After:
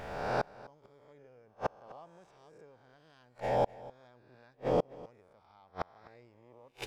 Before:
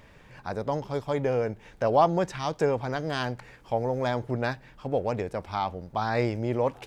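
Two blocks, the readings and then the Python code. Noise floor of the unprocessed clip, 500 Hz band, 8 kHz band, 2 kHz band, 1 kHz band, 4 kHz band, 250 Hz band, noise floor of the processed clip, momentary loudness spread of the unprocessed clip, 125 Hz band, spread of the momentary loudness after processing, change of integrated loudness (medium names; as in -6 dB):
-54 dBFS, -10.0 dB, under -10 dB, -10.5 dB, -10.0 dB, -11.5 dB, -13.5 dB, -65 dBFS, 9 LU, -14.5 dB, 21 LU, -7.0 dB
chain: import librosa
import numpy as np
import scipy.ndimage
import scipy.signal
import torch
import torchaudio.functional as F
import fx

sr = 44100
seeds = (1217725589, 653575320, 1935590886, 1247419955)

p1 = fx.spec_swells(x, sr, rise_s=1.3)
p2 = fx.gate_flip(p1, sr, shuts_db=-20.0, range_db=-37)
p3 = p2 + fx.echo_single(p2, sr, ms=253, db=-20.0, dry=0)
y = p3 * 10.0 ** (3.0 / 20.0)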